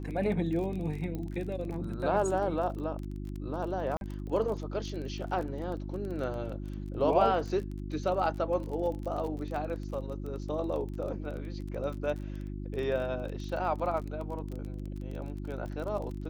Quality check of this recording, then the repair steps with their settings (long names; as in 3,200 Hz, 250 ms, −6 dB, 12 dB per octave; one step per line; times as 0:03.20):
surface crackle 27 per second −37 dBFS
mains hum 50 Hz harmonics 7 −38 dBFS
0:01.15: click −25 dBFS
0:03.97–0:04.01: drop-out 41 ms
0:09.56: drop-out 2.2 ms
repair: click removal
hum removal 50 Hz, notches 7
repair the gap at 0:03.97, 41 ms
repair the gap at 0:09.56, 2.2 ms